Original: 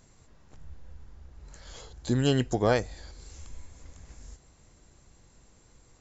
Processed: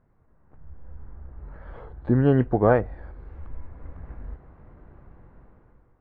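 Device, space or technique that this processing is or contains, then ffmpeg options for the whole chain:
action camera in a waterproof case: -af "lowpass=f=1.6k:w=0.5412,lowpass=f=1.6k:w=1.3066,dynaudnorm=f=360:g=5:m=15dB,volume=-5dB" -ar 22050 -c:a aac -b:a 48k

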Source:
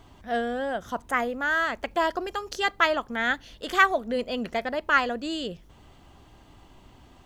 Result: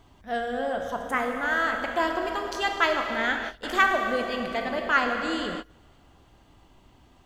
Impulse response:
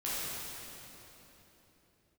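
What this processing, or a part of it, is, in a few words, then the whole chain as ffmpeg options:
keyed gated reverb: -filter_complex "[0:a]asplit=3[a][b][c];[1:a]atrim=start_sample=2205[d];[b][d]afir=irnorm=-1:irlink=0[e];[c]apad=whole_len=319979[f];[e][f]sidechaingate=range=-26dB:threshold=-42dB:ratio=16:detection=peak,volume=-6dB[g];[a][g]amix=inputs=2:normalize=0,volume=-4dB"

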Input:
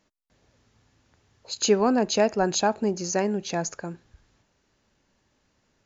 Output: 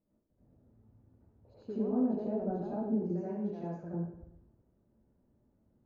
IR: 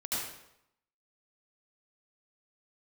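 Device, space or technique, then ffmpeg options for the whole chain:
television next door: -filter_complex "[0:a]asettb=1/sr,asplit=3[a][b][c];[a]atrim=end=3.104[d];[b]atrim=start=3.1:end=3.84,asetpts=PTS-STARTPTS,afade=t=in:d=0.004:c=qsin,afade=t=out:st=0.736:d=0.004:c=qsin,tiltshelf=f=1.4k:g=-7[e];[c]atrim=start=3.836[f];[d][e]acrossfade=d=0.004:c1=hsin:c2=qsin[g];[g][f]acrossfade=d=0.004:c1=qsin:c2=hsin,acompressor=threshold=-28dB:ratio=5,lowpass=450[h];[1:a]atrim=start_sample=2205[i];[h][i]afir=irnorm=-1:irlink=0,volume=-4dB"

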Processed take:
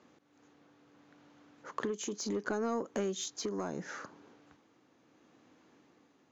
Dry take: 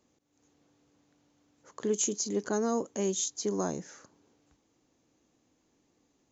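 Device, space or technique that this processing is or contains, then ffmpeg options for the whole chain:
AM radio: -af "highpass=130,lowpass=4k,acompressor=threshold=-37dB:ratio=10,asoftclip=type=tanh:threshold=-31.5dB,tremolo=f=0.72:d=0.37,equalizer=f=1.4k:t=o:w=1.1:g=6,volume=8.5dB"

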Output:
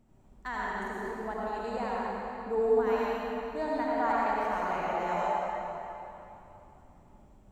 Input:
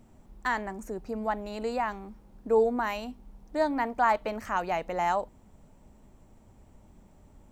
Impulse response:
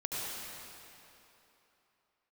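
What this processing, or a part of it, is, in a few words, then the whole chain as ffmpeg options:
swimming-pool hall: -filter_complex "[1:a]atrim=start_sample=2205[a];[0:a][a]afir=irnorm=-1:irlink=0,highshelf=f=4.5k:g=-4.5,volume=-6dB"

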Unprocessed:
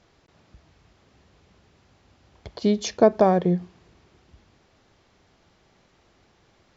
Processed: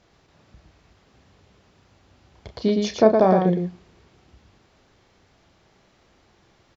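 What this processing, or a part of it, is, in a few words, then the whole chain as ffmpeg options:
slapback doubling: -filter_complex "[0:a]asplit=3[a][b][c];[b]adelay=32,volume=-8.5dB[d];[c]adelay=114,volume=-4.5dB[e];[a][d][e]amix=inputs=3:normalize=0,asettb=1/sr,asplit=3[f][g][h];[f]atrim=end=2.604[i];[g]atrim=start=2.6:end=3.47,asetpts=PTS-STARTPTS,afade=t=in:d=0.004:c=qsin,afade=t=out:st=0.866:d=0.004:c=qsin,lowpass=f=5.6k:w=0.5412,lowpass=f=5.6k:w=1.3066[j];[h]atrim=start=3.466[k];[i][j]acrossfade=d=0.004:c1=hsin:c2=qsin[l];[l][k]acrossfade=d=0.004:c1=qsin:c2=hsin"

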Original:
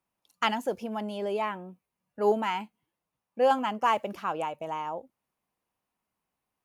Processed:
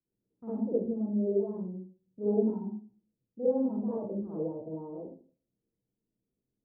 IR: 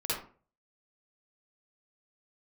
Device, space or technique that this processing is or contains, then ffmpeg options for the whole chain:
next room: -filter_complex "[0:a]lowpass=f=390:w=0.5412,lowpass=f=390:w=1.3066[a];[1:a]atrim=start_sample=2205[b];[a][b]afir=irnorm=-1:irlink=0"

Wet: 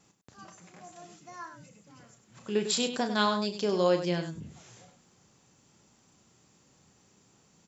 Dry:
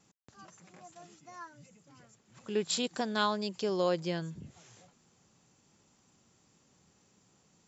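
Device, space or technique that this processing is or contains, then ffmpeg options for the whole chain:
slapback doubling: -filter_complex "[0:a]asplit=3[a][b][c];[b]adelay=34,volume=-9dB[d];[c]adelay=99,volume=-9.5dB[e];[a][d][e]amix=inputs=3:normalize=0,volume=3dB"

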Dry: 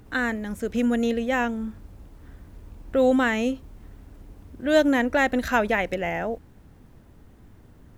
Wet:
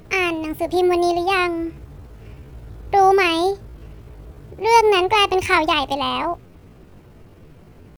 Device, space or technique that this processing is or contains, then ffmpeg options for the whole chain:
chipmunk voice: -af "asetrate=66075,aresample=44100,atempo=0.66742,volume=5.5dB"

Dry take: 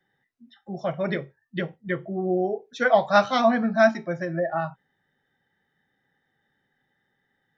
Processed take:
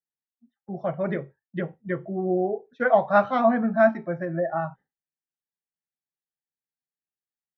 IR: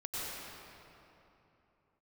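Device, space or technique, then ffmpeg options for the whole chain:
hearing-loss simulation: -af "lowpass=1.6k,agate=range=-33dB:threshold=-43dB:ratio=3:detection=peak"

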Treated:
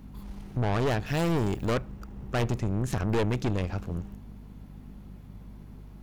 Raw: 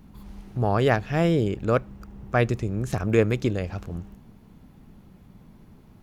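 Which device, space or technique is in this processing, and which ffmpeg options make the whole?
valve amplifier with mains hum: -filter_complex "[0:a]aeval=exprs='(tanh(20*val(0)+0.55)-tanh(0.55))/20':c=same,aeval=exprs='val(0)+0.00398*(sin(2*PI*50*n/s)+sin(2*PI*2*50*n/s)/2+sin(2*PI*3*50*n/s)/3+sin(2*PI*4*50*n/s)/4+sin(2*PI*5*50*n/s)/5)':c=same,asettb=1/sr,asplit=3[a][b][c];[a]atrim=end=1.064[d];[b]atrim=start=1.06:end=1.74,asetpts=PTS-STARTPTS,afade=t=in:d=0.004:c=qsin,afade=t=out:st=0.676:d=0.004:c=qsin,aemphasis=mode=production:type=50kf[e];[c]atrim=start=1.736[f];[d][e]acrossfade=d=0.004:c1=hsin:c2=qsin[g];[g][f]acrossfade=d=0.004:c1=qsin:c2=hsin,volume=3dB"

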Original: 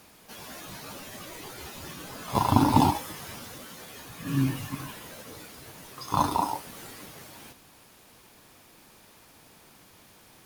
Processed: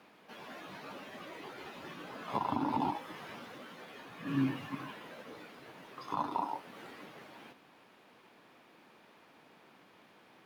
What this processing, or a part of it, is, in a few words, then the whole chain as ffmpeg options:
DJ mixer with the lows and highs turned down: -filter_complex "[0:a]acrossover=split=160 3500:gain=0.0708 1 0.1[a][b][c];[a][b][c]amix=inputs=3:normalize=0,alimiter=limit=-18dB:level=0:latency=1:release=415,volume=-2.5dB"

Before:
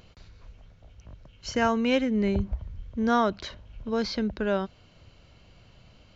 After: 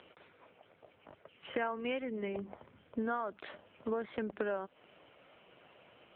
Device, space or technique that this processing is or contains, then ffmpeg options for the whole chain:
voicemail: -af "highpass=350,lowpass=2.8k,acompressor=threshold=-37dB:ratio=10,volume=6dB" -ar 8000 -c:a libopencore_amrnb -b:a 5900

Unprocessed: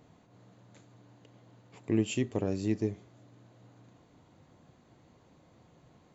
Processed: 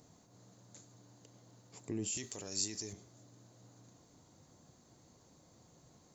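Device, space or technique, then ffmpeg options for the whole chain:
over-bright horn tweeter: -filter_complex "[0:a]highshelf=f=4k:t=q:w=1.5:g=11.5,alimiter=level_in=2dB:limit=-24dB:level=0:latency=1:release=19,volume=-2dB,asettb=1/sr,asplit=3[a][b][c];[a]atrim=end=2.174[d];[b]atrim=start=2.17:end=2.93,asetpts=PTS-STARTPTS,afade=t=in:d=0.004:c=qsin,afade=t=out:st=0.756:d=0.004:c=qsin,tiltshelf=f=970:g=-9.5[e];[c]atrim=start=2.926[f];[d][e]acrossfade=d=0.004:c1=hsin:c2=qsin[g];[g][f]acrossfade=d=0.004:c1=qsin:c2=hsin,volume=-3.5dB"

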